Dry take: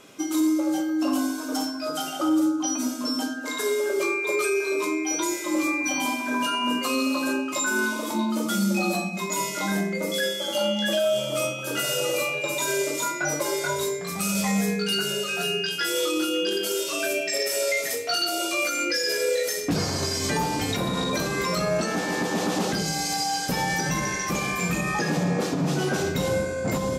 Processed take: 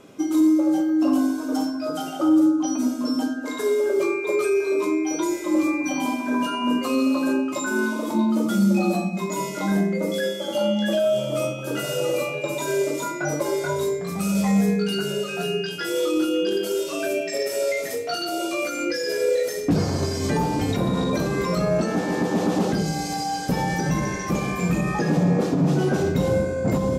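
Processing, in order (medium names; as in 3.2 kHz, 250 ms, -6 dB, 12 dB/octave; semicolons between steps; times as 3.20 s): tilt shelf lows +6 dB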